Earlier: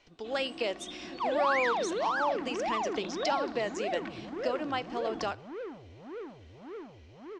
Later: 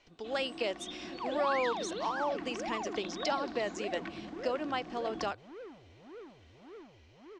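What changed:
second sound −6.0 dB
reverb: off

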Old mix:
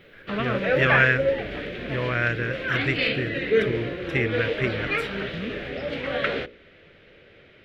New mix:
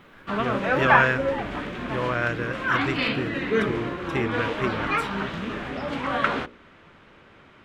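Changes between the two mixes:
background: add octave-band graphic EQ 125/250/500/1,000/2,000/4,000/8,000 Hz +4/+6/−9/+9/+4/−4/+7 dB
master: add graphic EQ with 10 bands 125 Hz −4 dB, 1,000 Hz +8 dB, 2,000 Hz −9 dB, 8,000 Hz +6 dB

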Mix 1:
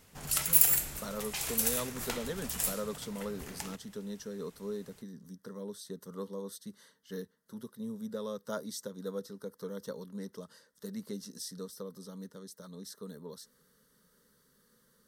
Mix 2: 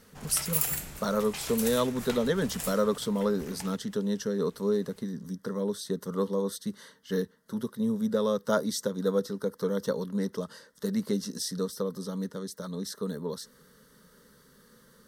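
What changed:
speech +11.5 dB
master: add high-shelf EQ 5,900 Hz −6.5 dB

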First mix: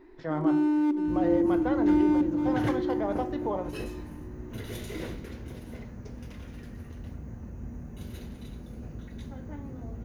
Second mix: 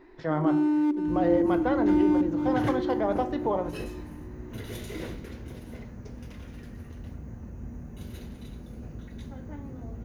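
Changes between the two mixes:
speech +4.0 dB
first sound: send −6.0 dB

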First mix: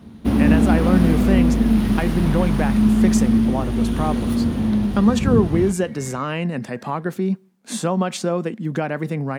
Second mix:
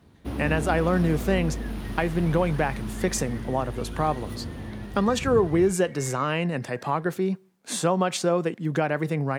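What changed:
first sound −10.0 dB
master: add parametric band 220 Hz −12.5 dB 0.4 octaves

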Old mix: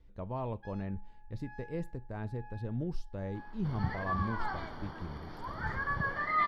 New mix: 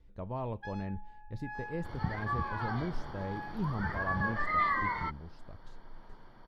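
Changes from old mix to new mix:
first sound +9.0 dB
second sound: entry −1.80 s

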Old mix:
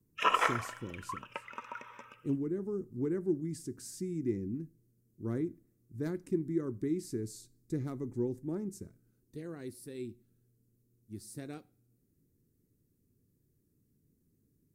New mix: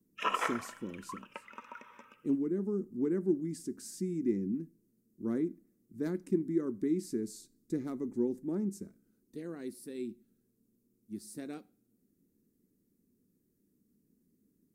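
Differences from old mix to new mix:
background −4.5 dB
master: add low shelf with overshoot 160 Hz −7 dB, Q 3

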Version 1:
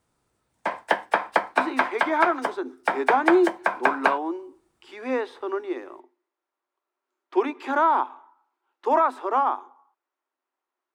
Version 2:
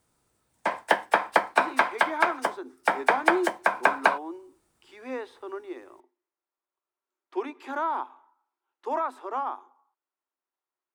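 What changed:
speech −8.5 dB
master: add high-shelf EQ 6,800 Hz +8 dB

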